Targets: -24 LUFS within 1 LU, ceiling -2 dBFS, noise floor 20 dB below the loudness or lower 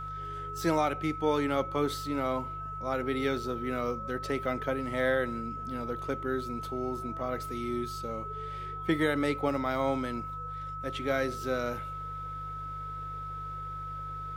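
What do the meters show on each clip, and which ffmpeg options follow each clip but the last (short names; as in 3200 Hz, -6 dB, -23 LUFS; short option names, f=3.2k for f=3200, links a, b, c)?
hum 50 Hz; harmonics up to 150 Hz; hum level -42 dBFS; steady tone 1300 Hz; tone level -37 dBFS; loudness -32.5 LUFS; peak -15.5 dBFS; loudness target -24.0 LUFS
-> -af "bandreject=f=50:t=h:w=4,bandreject=f=100:t=h:w=4,bandreject=f=150:t=h:w=4"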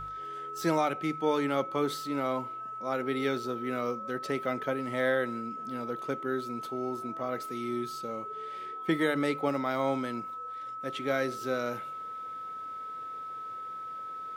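hum none; steady tone 1300 Hz; tone level -37 dBFS
-> -af "bandreject=f=1.3k:w=30"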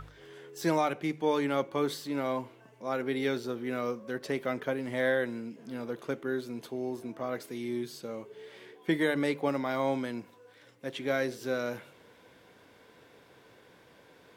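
steady tone none; loudness -33.0 LUFS; peak -16.0 dBFS; loudness target -24.0 LUFS
-> -af "volume=9dB"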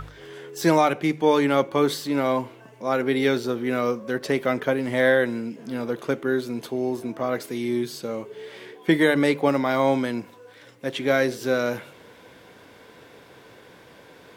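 loudness -24.0 LUFS; peak -7.0 dBFS; noise floor -50 dBFS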